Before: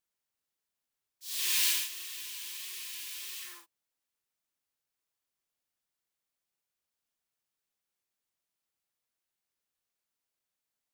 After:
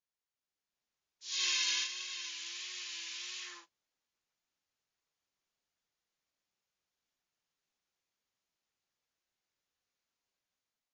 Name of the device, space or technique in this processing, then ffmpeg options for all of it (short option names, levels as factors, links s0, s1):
low-bitrate web radio: -filter_complex "[0:a]asettb=1/sr,asplit=3[s0][s1][s2];[s0]atrim=end=1.324[s3];[s1]atrim=start=1.32:end=2.29,asetpts=PTS-STARTPTS,afade=t=in:d=0.004:c=qsin,afade=t=out:st=0.966:d=0.004:c=qsin,aecho=1:1:1.9:0.75,atrim=end_sample=42777[s4];[s2]atrim=start=2.286[s5];[s3][s4]acrossfade=d=0.004:c1=hsin:c2=qsin[s6];[s6][s5]acrossfade=d=0.004:c1=qsin:c2=hsin,dynaudnorm=f=280:g=5:m=2.51,alimiter=limit=0.224:level=0:latency=1:release=21,volume=0.501" -ar 16000 -c:a libmp3lame -b:a 32k